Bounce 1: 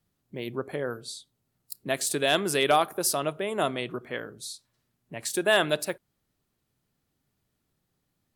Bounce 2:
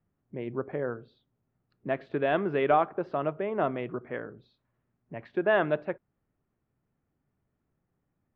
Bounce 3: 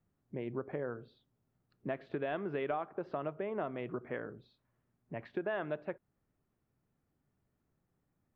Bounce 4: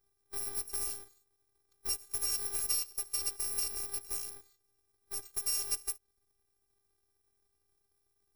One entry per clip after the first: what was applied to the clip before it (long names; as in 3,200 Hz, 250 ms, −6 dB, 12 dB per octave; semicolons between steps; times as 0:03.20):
Bessel low-pass filter 1,500 Hz, order 6
downward compressor 4 to 1, threshold −33 dBFS, peak gain reduction 12.5 dB; level −1.5 dB
samples in bit-reversed order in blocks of 128 samples; Butterworth band-reject 2,900 Hz, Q 5.2; phases set to zero 398 Hz; level +5 dB